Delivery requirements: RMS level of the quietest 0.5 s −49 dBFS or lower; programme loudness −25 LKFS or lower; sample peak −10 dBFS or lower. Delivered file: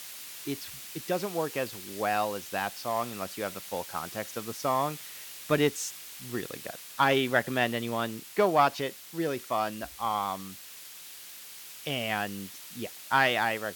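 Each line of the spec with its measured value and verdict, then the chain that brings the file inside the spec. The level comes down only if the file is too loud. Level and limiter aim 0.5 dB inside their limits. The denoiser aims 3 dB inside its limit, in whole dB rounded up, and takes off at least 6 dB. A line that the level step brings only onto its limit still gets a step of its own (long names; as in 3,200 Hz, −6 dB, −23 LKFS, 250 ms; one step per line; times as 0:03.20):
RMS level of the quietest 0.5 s −46 dBFS: out of spec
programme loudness −30.5 LKFS: in spec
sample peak −8.0 dBFS: out of spec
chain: broadband denoise 6 dB, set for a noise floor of −46 dBFS
brickwall limiter −10.5 dBFS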